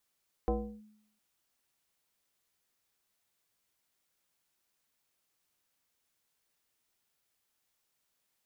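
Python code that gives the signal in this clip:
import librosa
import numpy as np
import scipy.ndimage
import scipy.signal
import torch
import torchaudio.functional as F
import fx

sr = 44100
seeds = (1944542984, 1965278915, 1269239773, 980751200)

y = fx.fm2(sr, length_s=0.71, level_db=-24.0, carrier_hz=213.0, ratio=1.27, index=2.0, index_s=0.34, decay_s=0.73, shape='linear')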